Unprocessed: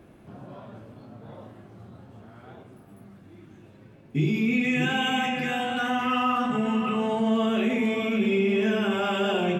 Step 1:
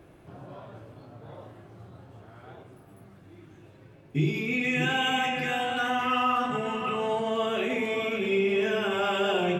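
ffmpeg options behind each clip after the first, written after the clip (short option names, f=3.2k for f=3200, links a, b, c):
-af "equalizer=f=220:w=5:g=-13"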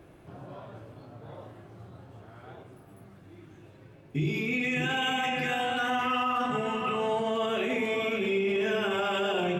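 -af "alimiter=limit=-20.5dB:level=0:latency=1:release=14"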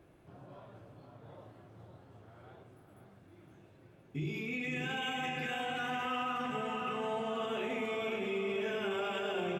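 -af "aecho=1:1:513|1026|1539|2052|2565|3078|3591:0.376|0.222|0.131|0.0772|0.0455|0.0269|0.0159,volume=-8.5dB"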